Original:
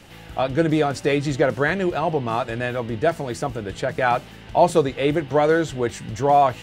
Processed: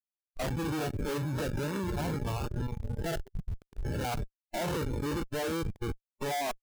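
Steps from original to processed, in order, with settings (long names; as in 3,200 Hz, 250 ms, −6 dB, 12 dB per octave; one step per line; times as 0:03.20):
spectrum averaged block by block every 100 ms
comparator with hysteresis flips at −24 dBFS
noise reduction from a noise print of the clip's start 18 dB
level −7.5 dB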